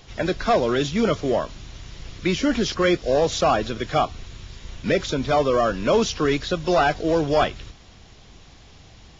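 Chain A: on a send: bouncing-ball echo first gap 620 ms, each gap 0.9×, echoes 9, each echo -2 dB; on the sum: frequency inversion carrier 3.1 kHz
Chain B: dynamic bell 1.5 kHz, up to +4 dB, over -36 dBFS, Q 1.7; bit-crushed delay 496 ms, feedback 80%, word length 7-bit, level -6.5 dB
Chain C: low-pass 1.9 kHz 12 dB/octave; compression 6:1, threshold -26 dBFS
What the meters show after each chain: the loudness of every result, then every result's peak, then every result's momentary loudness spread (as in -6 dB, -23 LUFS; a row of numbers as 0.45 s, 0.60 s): -16.0 LUFS, -21.0 LUFS, -31.0 LUFS; -3.5 dBFS, -5.5 dBFS, -15.5 dBFS; 4 LU, 8 LU, 19 LU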